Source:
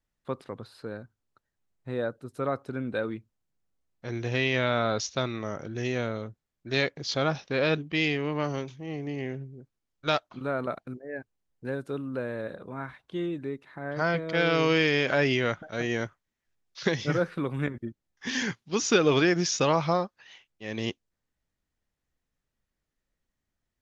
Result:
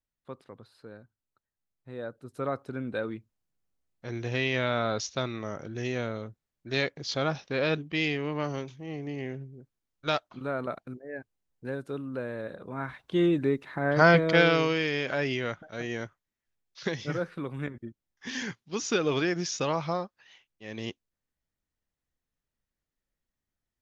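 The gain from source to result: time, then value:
1.92 s -9 dB
2.36 s -2 dB
12.52 s -2 dB
13.26 s +8 dB
14.27 s +8 dB
14.75 s -5 dB

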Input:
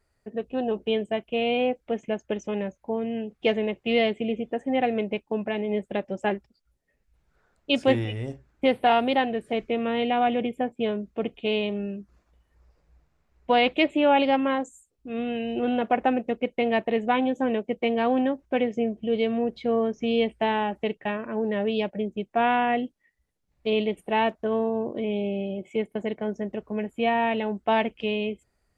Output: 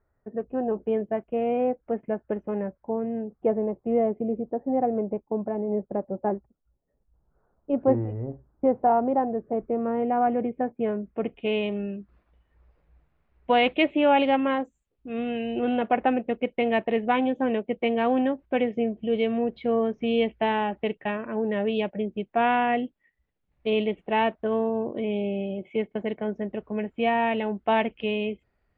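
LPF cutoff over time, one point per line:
LPF 24 dB/oct
3.05 s 1600 Hz
3.54 s 1100 Hz
9.48 s 1100 Hz
10.9 s 1900 Hz
11.81 s 3400 Hz

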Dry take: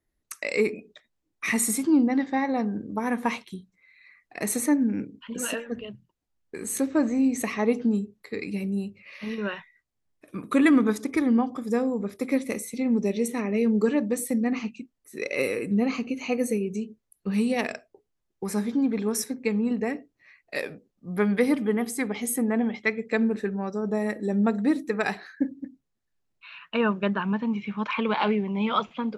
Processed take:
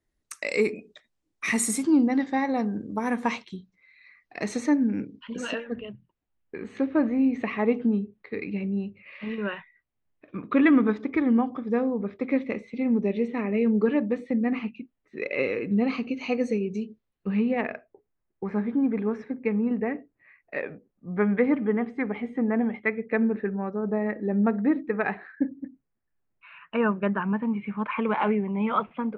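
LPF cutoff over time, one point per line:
LPF 24 dB/oct
3.11 s 10000 Hz
3.55 s 5700 Hz
5.39 s 5700 Hz
5.84 s 3100 Hz
15.31 s 3100 Hz
16.28 s 5100 Hz
16.86 s 5100 Hz
17.53 s 2300 Hz

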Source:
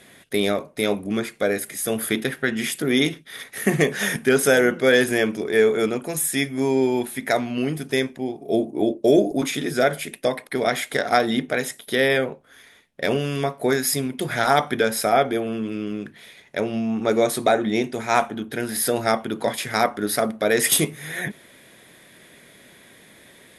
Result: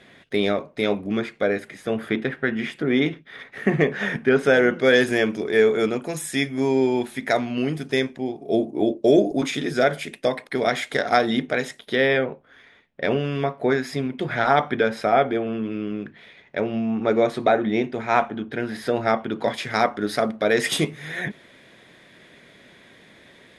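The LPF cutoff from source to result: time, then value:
1.15 s 4100 Hz
2 s 2400 Hz
4.35 s 2400 Hz
4.9 s 6300 Hz
11.45 s 6300 Hz
12.27 s 3000 Hz
19.17 s 3000 Hz
19.57 s 5000 Hz

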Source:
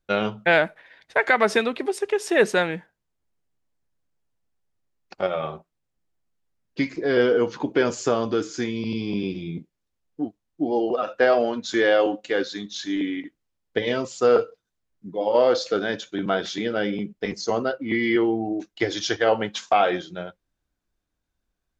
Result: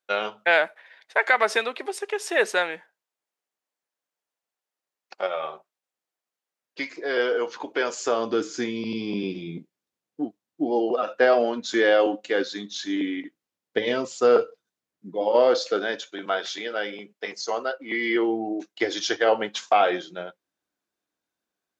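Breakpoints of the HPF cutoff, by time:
7.99 s 550 Hz
8.39 s 200 Hz
15.36 s 200 Hz
16.32 s 580 Hz
17.69 s 580 Hz
18.34 s 280 Hz

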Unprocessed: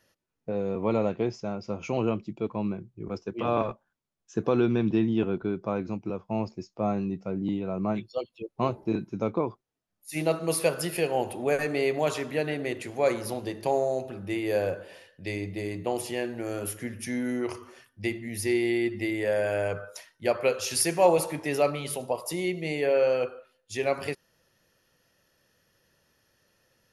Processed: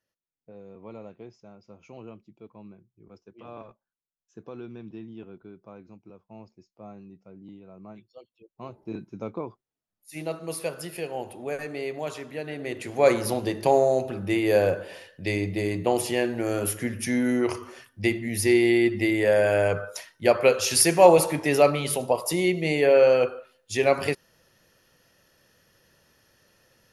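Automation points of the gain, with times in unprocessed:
8.52 s -16.5 dB
8.98 s -6 dB
12.43 s -6 dB
13.08 s +6 dB

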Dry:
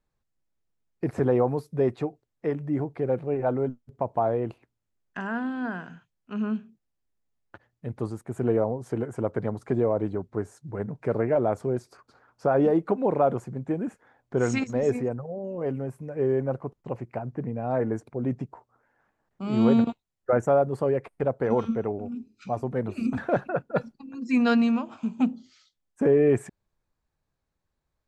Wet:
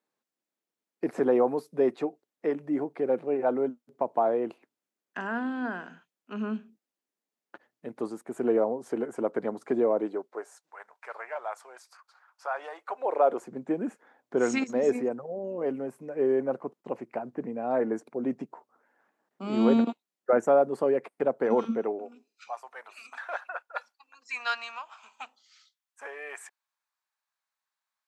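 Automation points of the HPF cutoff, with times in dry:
HPF 24 dB/oct
9.96 s 230 Hz
10.74 s 880 Hz
12.79 s 880 Hz
13.55 s 220 Hz
21.76 s 220 Hz
22.56 s 900 Hz

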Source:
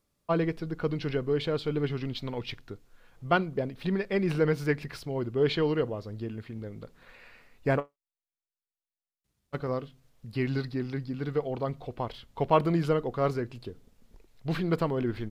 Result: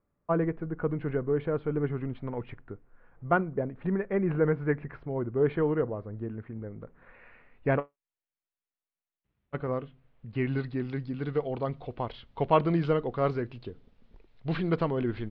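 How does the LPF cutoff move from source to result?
LPF 24 dB/oct
6.81 s 1800 Hz
7.73 s 2800 Hz
10.42 s 2800 Hz
10.95 s 3900 Hz

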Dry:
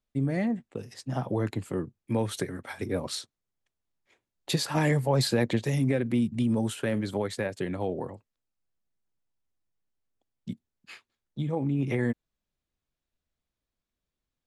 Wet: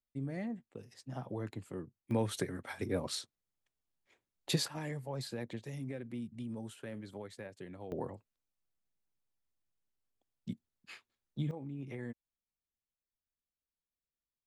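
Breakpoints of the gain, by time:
-11.5 dB
from 2.11 s -4.5 dB
from 4.68 s -16 dB
from 7.92 s -4.5 dB
from 11.51 s -15.5 dB

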